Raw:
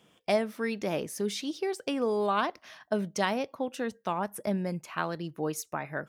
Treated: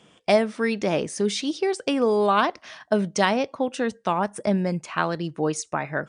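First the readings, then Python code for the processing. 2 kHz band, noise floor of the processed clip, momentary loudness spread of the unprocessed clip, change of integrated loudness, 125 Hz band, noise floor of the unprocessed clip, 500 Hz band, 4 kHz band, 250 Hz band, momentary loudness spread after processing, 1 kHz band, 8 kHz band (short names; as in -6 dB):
+7.5 dB, -60 dBFS, 6 LU, +7.5 dB, +7.5 dB, -67 dBFS, +7.5 dB, +7.5 dB, +7.5 dB, 6 LU, +7.5 dB, +6.5 dB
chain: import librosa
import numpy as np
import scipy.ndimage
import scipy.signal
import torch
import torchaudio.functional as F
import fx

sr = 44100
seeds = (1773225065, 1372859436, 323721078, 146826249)

y = fx.brickwall_lowpass(x, sr, high_hz=9800.0)
y = y * 10.0 ** (7.5 / 20.0)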